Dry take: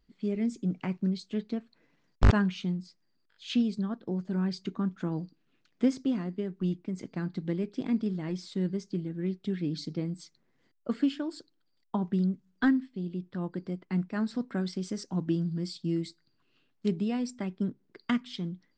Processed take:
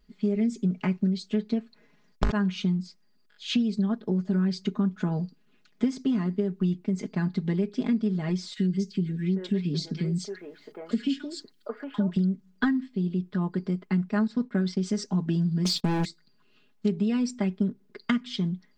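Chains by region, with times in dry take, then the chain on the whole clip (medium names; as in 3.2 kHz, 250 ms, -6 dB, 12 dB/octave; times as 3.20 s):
8.53–12.17 s: three bands offset in time highs, lows, mids 40/800 ms, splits 430/1600 Hz + tape noise reduction on one side only encoder only
14.27–14.86 s: expander -43 dBFS + distance through air 52 m
15.65–16.05 s: gate -53 dBFS, range -10 dB + waveshaping leveller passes 3 + loudspeaker Doppler distortion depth 0.56 ms
whole clip: comb 4.8 ms, depth 76%; compression 6:1, threshold -26 dBFS; trim +4.5 dB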